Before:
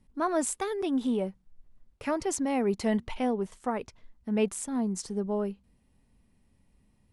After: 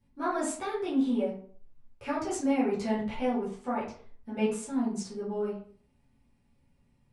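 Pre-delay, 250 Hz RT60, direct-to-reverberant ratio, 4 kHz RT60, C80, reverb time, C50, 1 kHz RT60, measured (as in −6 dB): 6 ms, 0.45 s, −10.0 dB, 0.30 s, 10.0 dB, 0.50 s, 5.5 dB, 0.45 s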